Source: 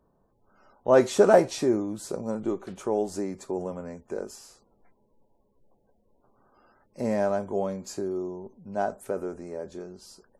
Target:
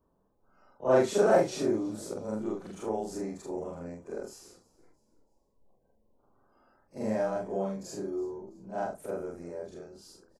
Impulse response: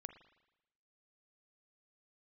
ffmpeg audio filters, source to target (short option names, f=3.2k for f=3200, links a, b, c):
-filter_complex "[0:a]afftfilt=real='re':imag='-im':win_size=4096:overlap=0.75,asplit=4[a][b][c][d];[b]adelay=331,afreqshift=-38,volume=-22dB[e];[c]adelay=662,afreqshift=-76,volume=-29.3dB[f];[d]adelay=993,afreqshift=-114,volume=-36.7dB[g];[a][e][f][g]amix=inputs=4:normalize=0"